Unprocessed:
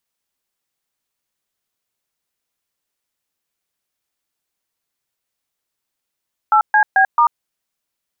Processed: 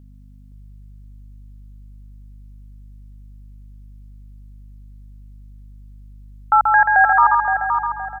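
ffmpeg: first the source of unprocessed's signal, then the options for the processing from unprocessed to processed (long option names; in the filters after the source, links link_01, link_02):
-f lavfi -i "aevalsrc='0.266*clip(min(mod(t,0.22),0.09-mod(t,0.22))/0.002,0,1)*(eq(floor(t/0.22),0)*(sin(2*PI*852*mod(t,0.22))+sin(2*PI*1336*mod(t,0.22)))+eq(floor(t/0.22),1)*(sin(2*PI*852*mod(t,0.22))+sin(2*PI*1633*mod(t,0.22)))+eq(floor(t/0.22),2)*(sin(2*PI*770*mod(t,0.22))+sin(2*PI*1633*mod(t,0.22)))+eq(floor(t/0.22),3)*(sin(2*PI*941*mod(t,0.22))+sin(2*PI*1209*mod(t,0.22))))':duration=0.88:sample_rate=44100"
-filter_complex "[0:a]asplit=2[link_01][link_02];[link_02]aecho=0:1:133|266|399|532:0.631|0.177|0.0495|0.0139[link_03];[link_01][link_03]amix=inputs=2:normalize=0,aeval=exprs='val(0)+0.00708*(sin(2*PI*50*n/s)+sin(2*PI*2*50*n/s)/2+sin(2*PI*3*50*n/s)/3+sin(2*PI*4*50*n/s)/4+sin(2*PI*5*50*n/s)/5)':channel_layout=same,asplit=2[link_04][link_05];[link_05]adelay=518,lowpass=frequency=1700:poles=1,volume=-5dB,asplit=2[link_06][link_07];[link_07]adelay=518,lowpass=frequency=1700:poles=1,volume=0.39,asplit=2[link_08][link_09];[link_09]adelay=518,lowpass=frequency=1700:poles=1,volume=0.39,asplit=2[link_10][link_11];[link_11]adelay=518,lowpass=frequency=1700:poles=1,volume=0.39,asplit=2[link_12][link_13];[link_13]adelay=518,lowpass=frequency=1700:poles=1,volume=0.39[link_14];[link_06][link_08][link_10][link_12][link_14]amix=inputs=5:normalize=0[link_15];[link_04][link_15]amix=inputs=2:normalize=0"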